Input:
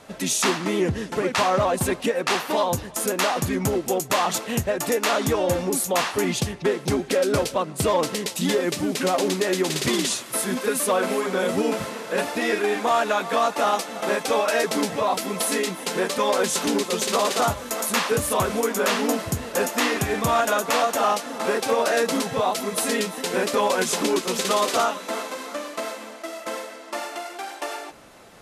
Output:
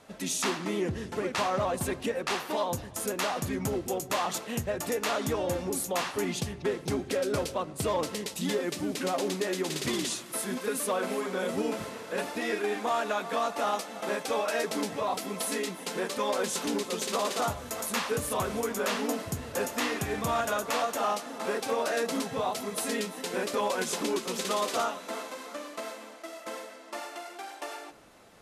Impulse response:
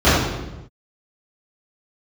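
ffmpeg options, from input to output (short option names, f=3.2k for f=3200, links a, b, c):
-filter_complex "[0:a]asplit=2[a][b];[1:a]atrim=start_sample=2205[c];[b][c]afir=irnorm=-1:irlink=0,volume=-45dB[d];[a][d]amix=inputs=2:normalize=0,volume=-8dB"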